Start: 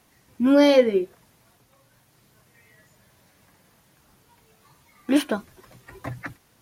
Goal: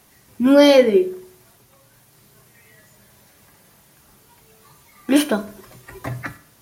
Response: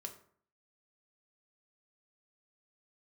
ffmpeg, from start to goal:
-filter_complex "[0:a]asplit=2[link_01][link_02];[1:a]atrim=start_sample=2205,highshelf=frequency=5900:gain=10.5[link_03];[link_02][link_03]afir=irnorm=-1:irlink=0,volume=4dB[link_04];[link_01][link_04]amix=inputs=2:normalize=0,volume=-1dB"

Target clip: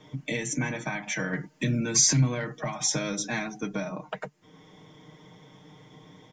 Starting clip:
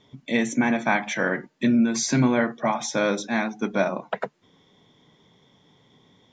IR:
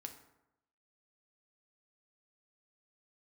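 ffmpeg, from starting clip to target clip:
-filter_complex "[0:a]equalizer=frequency=3800:width_type=o:width=0.54:gain=-8,aecho=1:1:6.5:0.73,asettb=1/sr,asplit=3[link_01][link_02][link_03];[link_01]atrim=end=1.334[link_04];[link_02]atrim=start=1.33:end=3.59,asetpts=PTS-STARTPTS,afade=type=in:duration=0.004:curve=qsin,afade=type=out:start_time=2.256:duration=0.004:curve=qsin,acontrast=38[link_05];[link_03]atrim=start=3.586[link_06];[link_04][link_05]acrossfade=duration=0.004:curve1=hsin:curve2=qsin[link_07];[link_07][link_06]acrossfade=duration=0.004:curve1=qsin:curve2=hsin,alimiter=limit=-15.5dB:level=0:latency=1:release=490,acrossover=split=170|3000[link_08][link_09][link_10];[link_09]acompressor=threshold=-40dB:ratio=4[link_11];[link_08][link_11][link_10]amix=inputs=3:normalize=0,volume=5.5dB"

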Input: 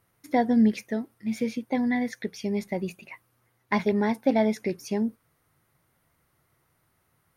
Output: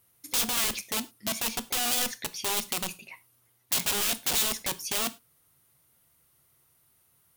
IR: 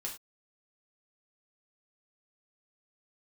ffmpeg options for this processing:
-filter_complex "[0:a]aeval=exprs='(mod(16.8*val(0)+1,2)-1)/16.8':channel_layout=same,aexciter=amount=2.7:drive=5.6:freq=2700,asplit=2[link_01][link_02];[1:a]atrim=start_sample=2205[link_03];[link_02][link_03]afir=irnorm=-1:irlink=0,volume=-8.5dB[link_04];[link_01][link_04]amix=inputs=2:normalize=0,volume=-6dB"

